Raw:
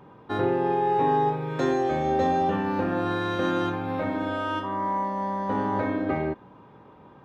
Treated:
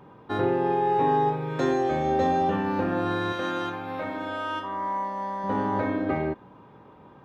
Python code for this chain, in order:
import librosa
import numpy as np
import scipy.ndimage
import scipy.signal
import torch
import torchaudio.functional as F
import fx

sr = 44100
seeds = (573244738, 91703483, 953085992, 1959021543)

y = fx.low_shelf(x, sr, hz=420.0, db=-9.5, at=(3.32, 5.44))